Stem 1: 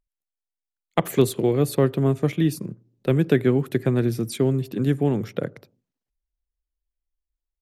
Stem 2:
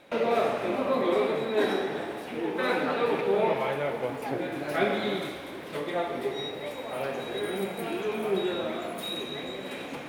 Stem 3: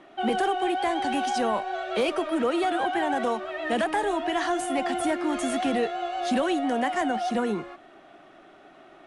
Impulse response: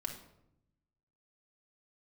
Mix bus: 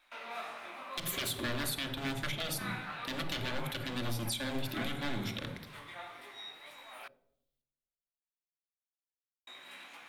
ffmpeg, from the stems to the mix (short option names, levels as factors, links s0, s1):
-filter_complex "[0:a]highshelf=f=11000:g=8,aeval=exprs='0.0794*(abs(mod(val(0)/0.0794+3,4)-2)-1)':c=same,equalizer=f=3500:w=2:g=11,volume=0.501,asplit=2[s0][s1];[s1]volume=0.668[s2];[1:a]flanger=delay=16.5:depth=5.9:speed=1.6,volume=0.501,asplit=3[s3][s4][s5];[s3]atrim=end=7.08,asetpts=PTS-STARTPTS,afade=t=out:st=7.076:d=0.004:c=hsin[s6];[s4]atrim=start=7.08:end=9.47,asetpts=PTS-STARTPTS,volume=0[s7];[s5]atrim=start=9.47,asetpts=PTS-STARTPTS,afade=t=in:d=0.004:c=hsin[s8];[s6][s7][s8]concat=n=3:v=0:a=1,asplit=2[s9][s10];[s10]volume=0.0944[s11];[s0][s9]amix=inputs=2:normalize=0,highpass=f=870:w=0.5412,highpass=f=870:w=1.3066,alimiter=level_in=1.41:limit=0.0631:level=0:latency=1:release=350,volume=0.708,volume=1[s12];[3:a]atrim=start_sample=2205[s13];[s2][s11]amix=inputs=2:normalize=0[s14];[s14][s13]afir=irnorm=-1:irlink=0[s15];[s12][s15]amix=inputs=2:normalize=0,alimiter=level_in=1.12:limit=0.0631:level=0:latency=1:release=128,volume=0.891"